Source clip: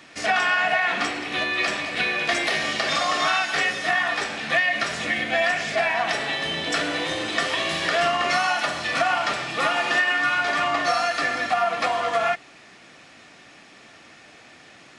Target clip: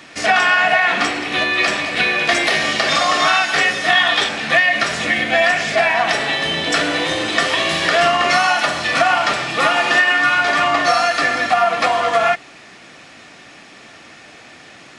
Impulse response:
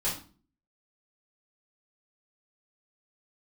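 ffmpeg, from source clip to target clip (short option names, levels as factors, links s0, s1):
-filter_complex "[0:a]asettb=1/sr,asplit=3[s0][s1][s2];[s0]atrim=end=3.894[s3];[s1]atrim=start=3.89:end=4.29,asetpts=PTS-STARTPTS,afade=t=in:d=0.004:c=qsin,afade=t=out:st=0.396:d=0.004:c=qsin,equalizer=f=3400:t=o:w=0.33:g=12.5[s4];[s2]atrim=start=4.286[s5];[s3][s4]acrossfade=d=0.004:c1=hsin:c2=qsin[s6];[s6][s5]acrossfade=d=0.004:c1=qsin:c2=hsin,volume=2.24"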